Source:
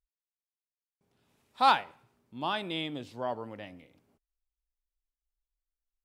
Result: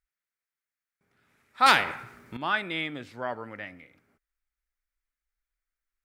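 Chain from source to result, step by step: band shelf 1700 Hz +11.5 dB 1.1 oct; 1.66–2.37 spectral compressor 2:1

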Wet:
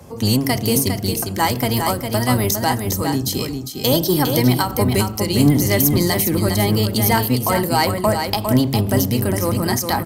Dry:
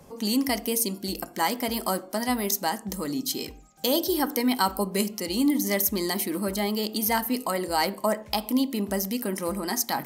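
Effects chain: octaver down 1 oct, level +2 dB; HPF 53 Hz; de-hum 67.33 Hz, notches 3; in parallel at -7 dB: hard clip -21.5 dBFS, distortion -11 dB; on the sum: echo 0.405 s -6 dB; ending taper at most 110 dB/s; gain +4.5 dB

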